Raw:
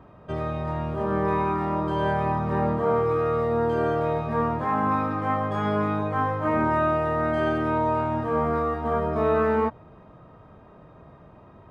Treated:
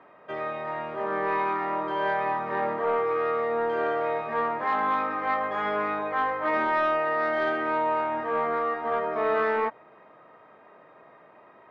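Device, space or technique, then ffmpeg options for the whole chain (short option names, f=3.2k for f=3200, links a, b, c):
intercom: -af "highpass=430,lowpass=3.9k,equalizer=f=2k:t=o:w=0.53:g=8.5,asoftclip=type=tanh:threshold=-15.5dB"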